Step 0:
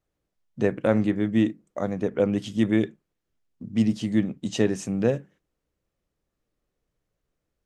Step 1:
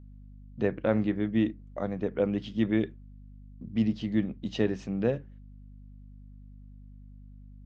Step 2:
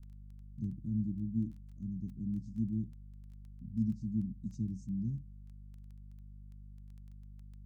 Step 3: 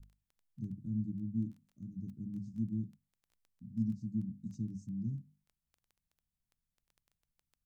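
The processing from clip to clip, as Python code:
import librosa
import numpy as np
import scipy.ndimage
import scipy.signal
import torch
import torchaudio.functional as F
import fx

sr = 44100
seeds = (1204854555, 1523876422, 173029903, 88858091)

y1 = scipy.signal.sosfilt(scipy.signal.butter(4, 4600.0, 'lowpass', fs=sr, output='sos'), x)
y1 = fx.add_hum(y1, sr, base_hz=50, snr_db=17)
y1 = F.gain(torch.from_numpy(y1), -4.5).numpy()
y2 = scipy.signal.sosfilt(scipy.signal.cheby2(4, 50, [470.0, 3300.0], 'bandstop', fs=sr, output='sos'), y1)
y2 = fx.dmg_crackle(y2, sr, seeds[0], per_s=10.0, level_db=-48.0)
y2 = F.gain(torch.from_numpy(y2), -2.0).numpy()
y3 = fx.hum_notches(y2, sr, base_hz=50, count=5)
y3 = F.gain(torch.from_numpy(y3), -1.0).numpy()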